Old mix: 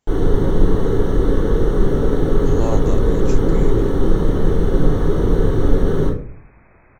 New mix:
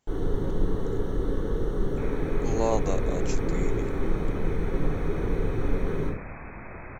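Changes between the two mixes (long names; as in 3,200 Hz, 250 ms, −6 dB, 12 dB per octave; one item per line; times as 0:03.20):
first sound −11.5 dB
second sound +10.5 dB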